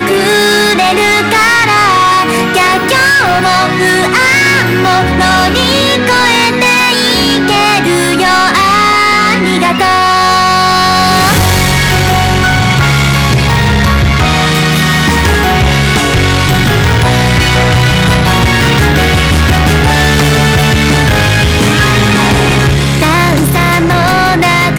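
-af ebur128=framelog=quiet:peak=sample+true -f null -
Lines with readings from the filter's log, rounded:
Integrated loudness:
  I:          -7.9 LUFS
  Threshold: -17.8 LUFS
Loudness range:
  LRA:         1.2 LU
  Threshold: -27.9 LUFS
  LRA low:    -8.5 LUFS
  LRA high:   -7.3 LUFS
Sample peak:
  Peak:       -5.0 dBFS
True peak:
  Peak:       -2.7 dBFS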